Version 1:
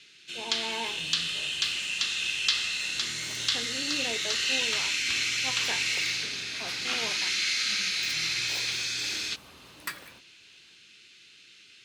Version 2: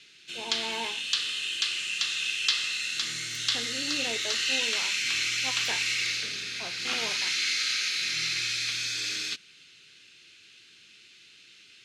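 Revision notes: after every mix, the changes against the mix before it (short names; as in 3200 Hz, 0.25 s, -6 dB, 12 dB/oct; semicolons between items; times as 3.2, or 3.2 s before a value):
second sound: muted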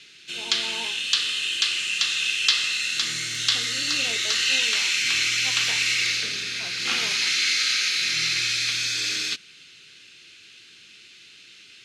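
speech -3.0 dB; background +5.5 dB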